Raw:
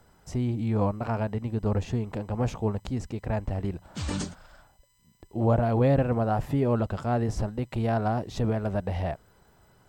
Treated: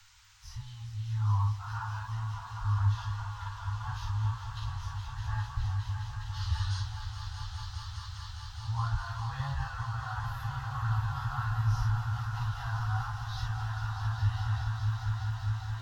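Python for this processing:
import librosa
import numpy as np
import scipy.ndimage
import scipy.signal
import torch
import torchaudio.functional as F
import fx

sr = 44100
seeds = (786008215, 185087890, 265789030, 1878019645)

y = scipy.signal.sosfilt(scipy.signal.ellip(3, 1.0, 80, [100.0, 870.0], 'bandstop', fs=sr, output='sos'), x)
y = fx.fixed_phaser(y, sr, hz=2300.0, stages=6)
y = fx.doubler(y, sr, ms=29.0, db=-3.0)
y = fx.echo_swell(y, sr, ms=128, loudest=5, wet_db=-8.5)
y = fx.stretch_vocoder_free(y, sr, factor=1.6)
y = fx.dmg_noise_band(y, sr, seeds[0], low_hz=1100.0, high_hz=7100.0, level_db=-62.0)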